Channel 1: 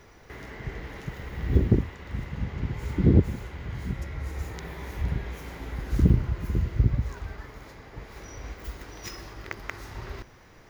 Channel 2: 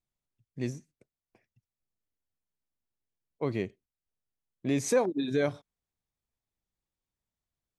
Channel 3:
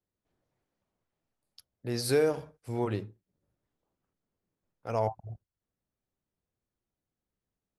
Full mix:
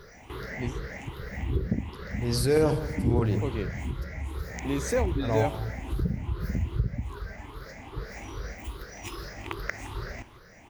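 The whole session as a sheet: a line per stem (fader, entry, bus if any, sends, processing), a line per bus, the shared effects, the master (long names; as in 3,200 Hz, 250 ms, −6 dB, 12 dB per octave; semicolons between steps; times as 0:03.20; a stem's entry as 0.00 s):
+1.5 dB, 0.00 s, no send, echo send −21 dB, rippled gain that drifts along the octave scale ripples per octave 0.61, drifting +2.5 Hz, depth 16 dB; downward compressor 2.5 to 1, threshold −28 dBFS, peak gain reduction 12.5 dB; shaped tremolo triangle 0.65 Hz, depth 40%
−2.0 dB, 0.00 s, no send, no echo send, no processing
+0.5 dB, 0.35 s, no send, echo send −14.5 dB, low-shelf EQ 220 Hz +9.5 dB; transient designer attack −5 dB, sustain +9 dB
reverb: not used
echo: repeating echo 167 ms, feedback 46%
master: no processing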